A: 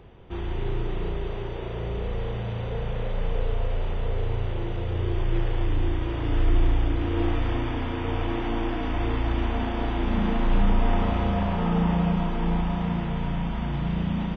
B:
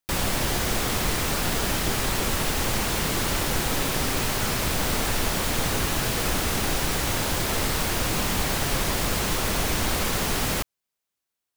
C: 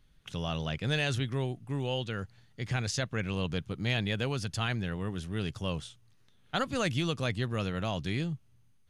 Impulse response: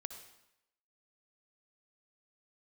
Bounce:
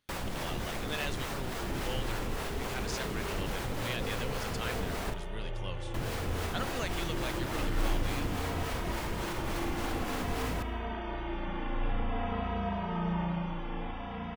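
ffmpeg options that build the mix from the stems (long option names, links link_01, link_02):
-filter_complex "[0:a]acrossover=split=3100[link_01][link_02];[link_02]acompressor=threshold=-53dB:ratio=4:attack=1:release=60[link_03];[link_01][link_03]amix=inputs=2:normalize=0,lowshelf=frequency=360:gain=-7.5,asplit=2[link_04][link_05];[link_05]adelay=2.8,afreqshift=-0.51[link_06];[link_04][link_06]amix=inputs=2:normalize=1,adelay=1300,volume=-2.5dB[link_07];[1:a]alimiter=limit=-17dB:level=0:latency=1:release=60,highshelf=frequency=3300:gain=-10,acrossover=split=450[link_08][link_09];[link_08]aeval=exprs='val(0)*(1-0.5/2+0.5/2*cos(2*PI*3.5*n/s))':channel_layout=same[link_10];[link_09]aeval=exprs='val(0)*(1-0.5/2-0.5/2*cos(2*PI*3.5*n/s))':channel_layout=same[link_11];[link_10][link_11]amix=inputs=2:normalize=0,volume=-8dB,asplit=3[link_12][link_13][link_14];[link_12]atrim=end=5.14,asetpts=PTS-STARTPTS,afade=type=out:start_time=5.136:duration=0.004:curve=hsin[link_15];[link_13]atrim=start=5.14:end=5.94,asetpts=PTS-STARTPTS,volume=0[link_16];[link_14]atrim=start=5.94,asetpts=PTS-STARTPTS,afade=type=in:duration=0.004:curve=hsin[link_17];[link_15][link_16][link_17]concat=n=3:v=0:a=1,asplit=2[link_18][link_19];[link_19]volume=-4.5dB[link_20];[2:a]highpass=frequency=440:poles=1,volume=-5.5dB[link_21];[3:a]atrim=start_sample=2205[link_22];[link_20][link_22]afir=irnorm=-1:irlink=0[link_23];[link_07][link_18][link_21][link_23]amix=inputs=4:normalize=0"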